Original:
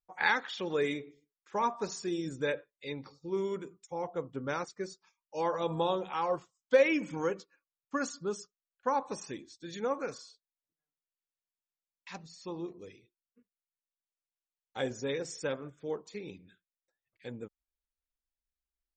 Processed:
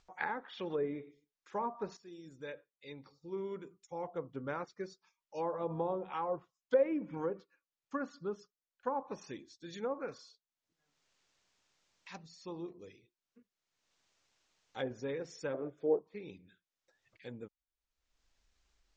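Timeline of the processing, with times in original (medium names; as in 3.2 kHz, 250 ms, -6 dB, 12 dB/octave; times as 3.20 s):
1.97–4.12 s: fade in, from -16 dB
15.54–15.99 s: high-order bell 500 Hz +10.5 dB
whole clip: low-pass that closes with the level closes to 890 Hz, closed at -27 dBFS; steep low-pass 7.1 kHz; upward compressor, threshold -51 dBFS; trim -4 dB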